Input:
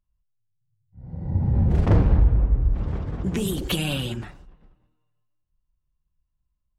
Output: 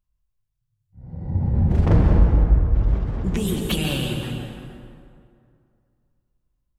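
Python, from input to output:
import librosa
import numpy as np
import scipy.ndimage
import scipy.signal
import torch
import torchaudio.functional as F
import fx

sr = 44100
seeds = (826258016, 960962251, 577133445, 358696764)

y = fx.rev_plate(x, sr, seeds[0], rt60_s=2.4, hf_ratio=0.6, predelay_ms=120, drr_db=2.5)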